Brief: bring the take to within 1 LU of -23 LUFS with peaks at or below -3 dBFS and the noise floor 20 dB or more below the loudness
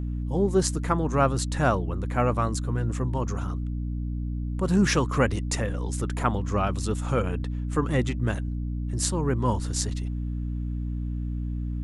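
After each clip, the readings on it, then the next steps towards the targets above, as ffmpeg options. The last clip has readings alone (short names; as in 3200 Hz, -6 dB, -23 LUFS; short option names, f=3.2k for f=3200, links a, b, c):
hum 60 Hz; harmonics up to 300 Hz; hum level -27 dBFS; loudness -27.0 LUFS; peak -6.5 dBFS; loudness target -23.0 LUFS
-> -af "bandreject=f=60:t=h:w=6,bandreject=f=120:t=h:w=6,bandreject=f=180:t=h:w=6,bandreject=f=240:t=h:w=6,bandreject=f=300:t=h:w=6"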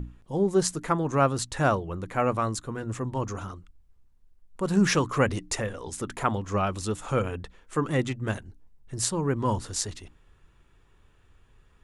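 hum none; loudness -28.0 LUFS; peak -7.0 dBFS; loudness target -23.0 LUFS
-> -af "volume=5dB,alimiter=limit=-3dB:level=0:latency=1"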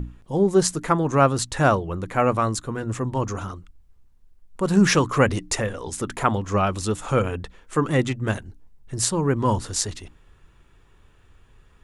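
loudness -23.0 LUFS; peak -3.0 dBFS; noise floor -55 dBFS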